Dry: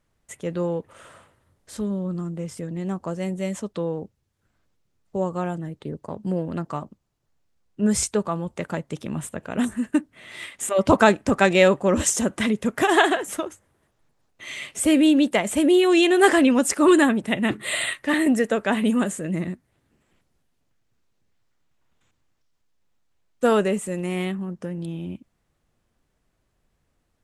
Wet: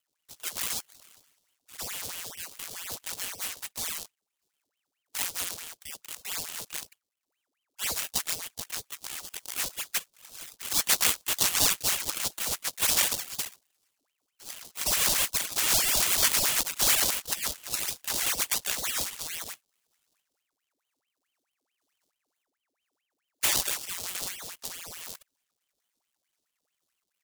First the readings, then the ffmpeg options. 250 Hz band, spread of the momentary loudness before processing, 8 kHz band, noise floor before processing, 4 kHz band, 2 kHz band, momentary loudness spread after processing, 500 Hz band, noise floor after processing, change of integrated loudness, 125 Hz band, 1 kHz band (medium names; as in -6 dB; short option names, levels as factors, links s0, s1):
-28.0 dB, 16 LU, +3.5 dB, -72 dBFS, +2.0 dB, -8.0 dB, 17 LU, -22.5 dB, -84 dBFS, -5.0 dB, -18.0 dB, -12.5 dB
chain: -af "acrusher=samples=32:mix=1:aa=0.000001:lfo=1:lforange=32:lforate=2,aexciter=amount=11.3:drive=7.4:freq=3300,aeval=exprs='val(0)*sin(2*PI*1700*n/s+1700*0.85/4.6*sin(2*PI*4.6*n/s))':c=same,volume=0.168"